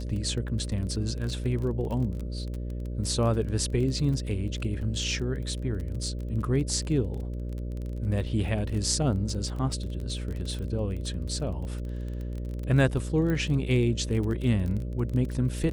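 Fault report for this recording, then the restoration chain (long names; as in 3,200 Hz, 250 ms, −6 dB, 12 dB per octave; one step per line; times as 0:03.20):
mains buzz 60 Hz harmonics 10 −33 dBFS
surface crackle 25 per second −33 dBFS
0:13.30: click −19 dBFS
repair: click removal
hum removal 60 Hz, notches 10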